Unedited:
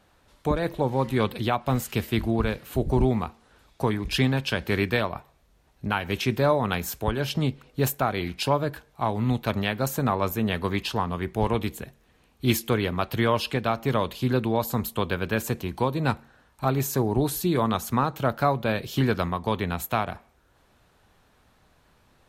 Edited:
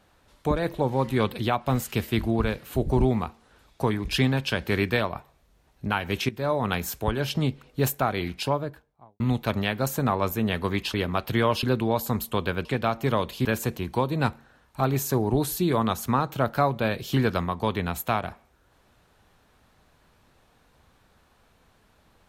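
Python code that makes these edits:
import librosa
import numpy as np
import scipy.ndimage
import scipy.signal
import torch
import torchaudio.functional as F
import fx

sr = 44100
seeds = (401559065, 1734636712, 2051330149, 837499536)

y = fx.studio_fade_out(x, sr, start_s=8.23, length_s=0.97)
y = fx.edit(y, sr, fx.fade_in_from(start_s=6.29, length_s=0.38, floor_db=-16.0),
    fx.cut(start_s=10.94, length_s=1.84),
    fx.move(start_s=13.47, length_s=0.8, to_s=15.29), tone=tone)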